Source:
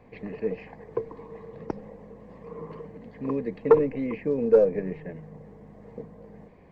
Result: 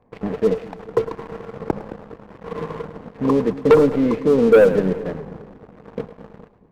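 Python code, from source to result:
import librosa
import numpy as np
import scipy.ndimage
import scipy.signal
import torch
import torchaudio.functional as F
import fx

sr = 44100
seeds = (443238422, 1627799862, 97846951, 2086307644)

y = fx.high_shelf_res(x, sr, hz=1700.0, db=-8.5, q=1.5)
y = fx.leveller(y, sr, passes=3)
y = fx.echo_split(y, sr, split_hz=400.0, low_ms=215, high_ms=107, feedback_pct=52, wet_db=-14.0)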